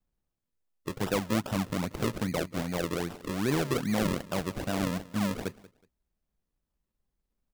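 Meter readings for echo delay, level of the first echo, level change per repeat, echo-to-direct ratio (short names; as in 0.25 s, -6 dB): 0.185 s, -20.0 dB, -12.0 dB, -19.5 dB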